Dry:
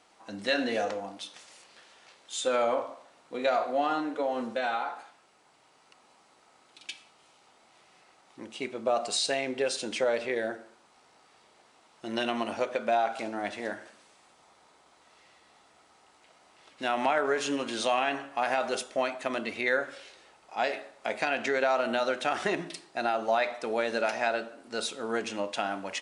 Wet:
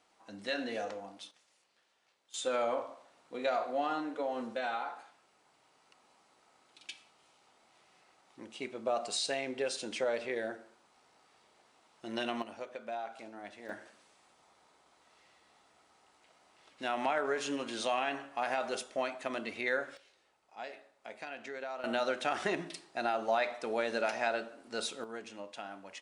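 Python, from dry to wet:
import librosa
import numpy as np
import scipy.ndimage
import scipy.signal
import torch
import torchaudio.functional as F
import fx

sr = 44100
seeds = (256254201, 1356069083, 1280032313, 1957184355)

y = fx.gain(x, sr, db=fx.steps((0.0, -8.0), (1.31, -18.0), (2.34, -5.5), (12.42, -13.5), (13.69, -5.5), (19.97, -15.0), (21.84, -4.0), (25.04, -13.0)))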